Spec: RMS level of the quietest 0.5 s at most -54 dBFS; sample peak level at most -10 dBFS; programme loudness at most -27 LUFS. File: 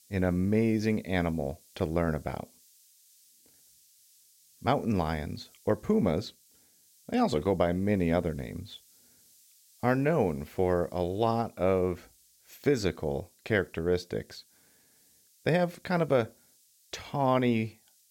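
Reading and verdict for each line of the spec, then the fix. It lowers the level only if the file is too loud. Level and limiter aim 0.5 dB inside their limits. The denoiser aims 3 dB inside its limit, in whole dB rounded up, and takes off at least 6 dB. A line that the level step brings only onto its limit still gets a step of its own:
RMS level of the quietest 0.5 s -64 dBFS: OK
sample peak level -11.5 dBFS: OK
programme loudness -29.5 LUFS: OK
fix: none

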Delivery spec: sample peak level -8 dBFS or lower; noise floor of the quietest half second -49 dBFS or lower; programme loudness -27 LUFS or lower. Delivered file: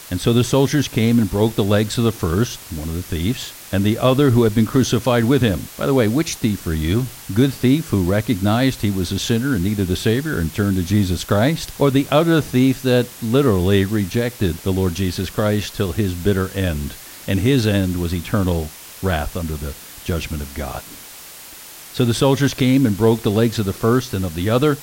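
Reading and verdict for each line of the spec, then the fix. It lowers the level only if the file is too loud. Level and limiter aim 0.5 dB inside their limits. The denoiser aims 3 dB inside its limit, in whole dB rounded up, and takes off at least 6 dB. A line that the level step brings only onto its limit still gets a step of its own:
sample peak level -3.5 dBFS: fail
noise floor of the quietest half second -38 dBFS: fail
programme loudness -19.0 LUFS: fail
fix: denoiser 6 dB, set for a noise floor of -38 dBFS; gain -8.5 dB

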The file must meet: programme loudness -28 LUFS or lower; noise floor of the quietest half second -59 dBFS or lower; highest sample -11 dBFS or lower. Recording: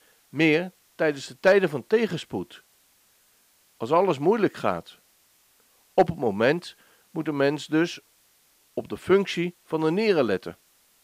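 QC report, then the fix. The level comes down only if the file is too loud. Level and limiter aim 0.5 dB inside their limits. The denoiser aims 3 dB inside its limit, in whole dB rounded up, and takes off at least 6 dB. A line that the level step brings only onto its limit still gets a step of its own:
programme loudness -24.5 LUFS: fail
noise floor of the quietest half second -62 dBFS: OK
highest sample -8.0 dBFS: fail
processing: gain -4 dB

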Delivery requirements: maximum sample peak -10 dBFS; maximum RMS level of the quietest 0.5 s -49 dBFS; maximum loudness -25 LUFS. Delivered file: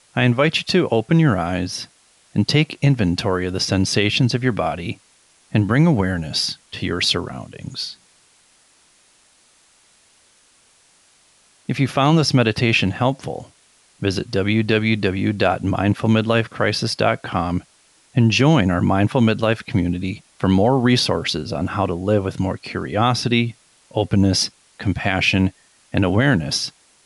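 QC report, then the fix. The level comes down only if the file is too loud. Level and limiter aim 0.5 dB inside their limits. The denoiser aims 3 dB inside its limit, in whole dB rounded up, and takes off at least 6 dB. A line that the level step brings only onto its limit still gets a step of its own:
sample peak -5.0 dBFS: fail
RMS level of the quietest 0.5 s -56 dBFS: OK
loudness -19.5 LUFS: fail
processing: gain -6 dB

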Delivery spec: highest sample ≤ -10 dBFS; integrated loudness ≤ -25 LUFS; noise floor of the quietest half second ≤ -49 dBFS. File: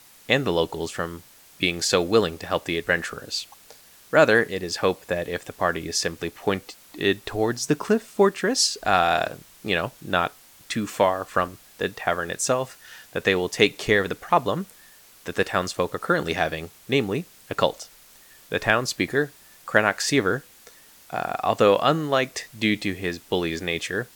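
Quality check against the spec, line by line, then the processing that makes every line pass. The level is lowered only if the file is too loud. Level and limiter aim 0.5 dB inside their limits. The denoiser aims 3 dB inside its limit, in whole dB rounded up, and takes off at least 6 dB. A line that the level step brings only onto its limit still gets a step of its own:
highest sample -2.0 dBFS: fail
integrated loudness -24.0 LUFS: fail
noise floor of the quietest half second -51 dBFS: OK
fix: gain -1.5 dB; limiter -10.5 dBFS

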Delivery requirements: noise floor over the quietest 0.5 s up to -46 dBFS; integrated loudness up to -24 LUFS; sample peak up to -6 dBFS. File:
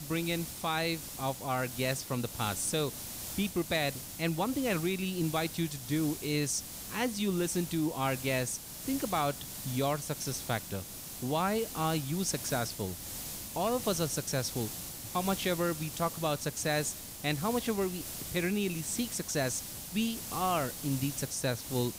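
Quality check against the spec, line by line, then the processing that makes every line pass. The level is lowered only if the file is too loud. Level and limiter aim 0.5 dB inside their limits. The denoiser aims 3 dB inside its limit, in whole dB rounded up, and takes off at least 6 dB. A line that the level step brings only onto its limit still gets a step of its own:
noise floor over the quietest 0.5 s -41 dBFS: fail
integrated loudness -33.0 LUFS: OK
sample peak -17.0 dBFS: OK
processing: denoiser 8 dB, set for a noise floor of -41 dBFS

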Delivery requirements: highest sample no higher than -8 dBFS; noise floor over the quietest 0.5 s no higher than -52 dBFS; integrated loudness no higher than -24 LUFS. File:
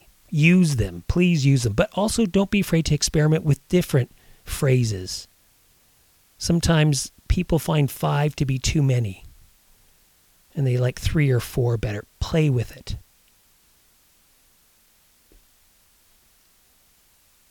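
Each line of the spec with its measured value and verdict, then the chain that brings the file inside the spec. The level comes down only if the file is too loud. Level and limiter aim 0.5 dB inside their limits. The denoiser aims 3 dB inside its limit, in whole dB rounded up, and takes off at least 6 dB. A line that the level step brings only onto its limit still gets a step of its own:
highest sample -5.0 dBFS: fail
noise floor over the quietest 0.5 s -59 dBFS: OK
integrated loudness -22.0 LUFS: fail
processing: gain -2.5 dB; limiter -8.5 dBFS

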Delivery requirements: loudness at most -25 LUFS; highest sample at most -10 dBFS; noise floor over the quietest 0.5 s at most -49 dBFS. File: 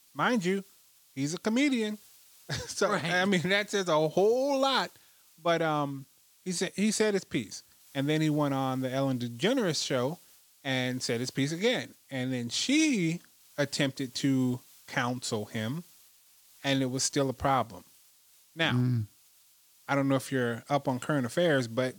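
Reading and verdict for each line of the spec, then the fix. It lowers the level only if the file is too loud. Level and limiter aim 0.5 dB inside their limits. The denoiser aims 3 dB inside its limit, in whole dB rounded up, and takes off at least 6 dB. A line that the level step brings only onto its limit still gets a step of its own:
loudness -29.5 LUFS: OK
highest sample -11.5 dBFS: OK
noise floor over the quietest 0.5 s -62 dBFS: OK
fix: none

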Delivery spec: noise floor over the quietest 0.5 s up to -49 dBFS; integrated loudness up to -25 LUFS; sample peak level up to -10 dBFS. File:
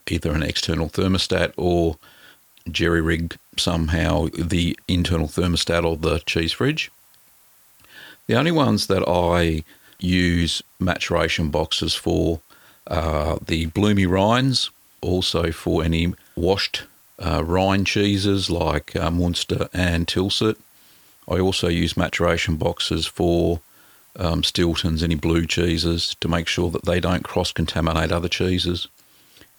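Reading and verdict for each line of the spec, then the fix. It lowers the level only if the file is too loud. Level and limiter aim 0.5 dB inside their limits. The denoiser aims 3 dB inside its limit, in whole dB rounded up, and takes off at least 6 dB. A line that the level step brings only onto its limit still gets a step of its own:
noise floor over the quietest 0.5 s -54 dBFS: OK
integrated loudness -21.5 LUFS: fail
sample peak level -3.5 dBFS: fail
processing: gain -4 dB; limiter -10.5 dBFS

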